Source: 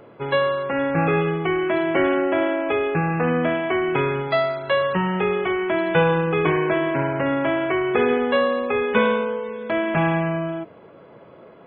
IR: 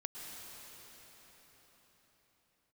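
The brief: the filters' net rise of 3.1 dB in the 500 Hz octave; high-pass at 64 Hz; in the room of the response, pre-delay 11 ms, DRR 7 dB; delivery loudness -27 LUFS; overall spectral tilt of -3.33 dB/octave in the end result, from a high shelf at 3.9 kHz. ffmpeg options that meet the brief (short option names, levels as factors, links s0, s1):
-filter_complex "[0:a]highpass=64,equalizer=f=500:t=o:g=4,highshelf=f=3900:g=-7,asplit=2[s0][s1];[1:a]atrim=start_sample=2205,adelay=11[s2];[s1][s2]afir=irnorm=-1:irlink=0,volume=0.473[s3];[s0][s3]amix=inputs=2:normalize=0,volume=0.376"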